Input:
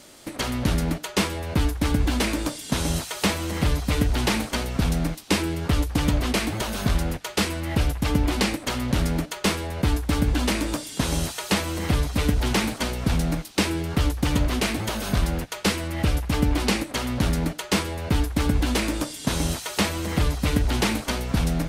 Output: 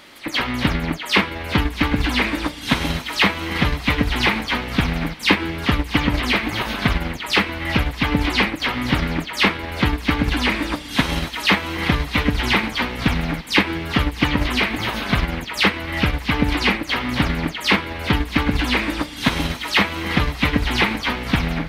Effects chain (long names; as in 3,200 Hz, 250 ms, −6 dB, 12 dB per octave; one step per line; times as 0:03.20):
every frequency bin delayed by itself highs early, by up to 113 ms
parametric band 3,300 Hz +4 dB 1.1 octaves
on a send: feedback delay with all-pass diffusion 691 ms, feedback 46%, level −16 dB
on the sum: transient designer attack +5 dB, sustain −4 dB
octave-band graphic EQ 250/1,000/2,000/4,000/8,000 Hz +4/+6/+10/+3/−8 dB
level −1.5 dB